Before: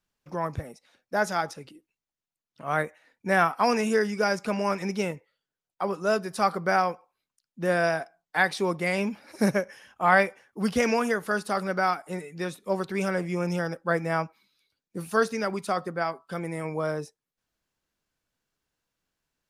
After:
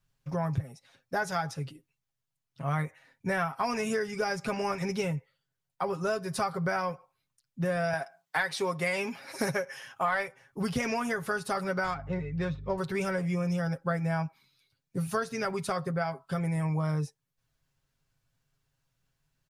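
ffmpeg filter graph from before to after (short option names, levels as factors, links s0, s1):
-filter_complex "[0:a]asettb=1/sr,asplit=3[s0][s1][s2];[s0]atrim=end=7.934[s3];[s1]atrim=start=7.93:end=10.28,asetpts=PTS-STARTPTS,afade=t=in:d=0.004:c=qsin,afade=t=out:st=2.346:d=0.004:c=qsin,highpass=f=480:p=1,acontrast=36[s4];[s2]atrim=start=10.276[s5];[s3][s4]acrossfade=d=0.004:c1=hsin:c2=qsin[s6];[s6][s5]acrossfade=d=0.004:c1=qsin:c2=hsin,asettb=1/sr,asplit=3[s7][s8][s9];[s7]atrim=end=11.844[s10];[s8]atrim=start=11.84:end=12.78,asetpts=PTS-STARTPTS,afade=t=in:d=0.004:c=qsin,afade=t=out:st=0.936:d=0.004:c=qsin,lowpass=f=5900:w=0.5412,lowpass=f=5900:w=1.3066,adynamicsmooth=sensitivity=3.5:basefreq=2700,aeval=exprs='val(0)+0.00355*(sin(2*PI*50*n/s)+sin(2*PI*2*50*n/s)/2+sin(2*PI*3*50*n/s)/3+sin(2*PI*4*50*n/s)/4+sin(2*PI*5*50*n/s)/5)':c=same[s11];[s9]atrim=start=12.776[s12];[s10][s11]acrossfade=d=0.004:c1=hsin:c2=qsin[s13];[s13][s12]acrossfade=d=0.004:c1=qsin:c2=hsin,lowshelf=f=190:t=q:w=1.5:g=9,aecho=1:1:7.4:0.61,acompressor=threshold=0.0447:ratio=5"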